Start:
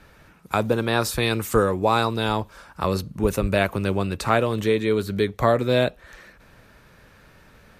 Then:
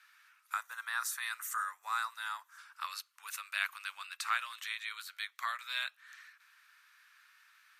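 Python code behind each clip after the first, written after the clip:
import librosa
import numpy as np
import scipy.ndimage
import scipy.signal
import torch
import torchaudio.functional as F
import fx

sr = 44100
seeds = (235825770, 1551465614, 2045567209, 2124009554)

y = fx.spec_box(x, sr, start_s=0.53, length_s=2.05, low_hz=2100.0, high_hz=5500.0, gain_db=-9)
y = scipy.signal.sosfilt(scipy.signal.butter(6, 1200.0, 'highpass', fs=sr, output='sos'), y)
y = y * 10.0 ** (-7.0 / 20.0)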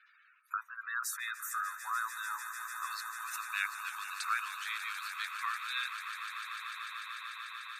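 y = fx.spec_gate(x, sr, threshold_db=-15, keep='strong')
y = fx.echo_swell(y, sr, ms=148, loudest=8, wet_db=-13.0)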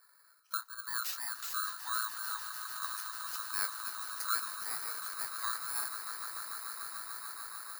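y = fx.bit_reversed(x, sr, seeds[0], block=16)
y = fx.doubler(y, sr, ms=25.0, db=-10.5)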